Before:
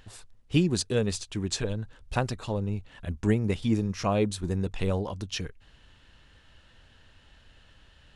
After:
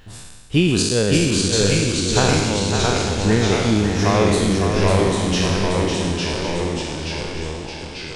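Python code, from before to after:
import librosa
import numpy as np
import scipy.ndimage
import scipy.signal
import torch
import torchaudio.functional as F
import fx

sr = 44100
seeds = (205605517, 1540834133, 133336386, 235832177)

y = fx.spec_trails(x, sr, decay_s=1.41)
y = fx.echo_thinned(y, sr, ms=552, feedback_pct=46, hz=360.0, wet_db=-5.5)
y = fx.echo_pitch(y, sr, ms=539, semitones=-1, count=3, db_per_echo=-3.0)
y = y * 10.0 ** (5.0 / 20.0)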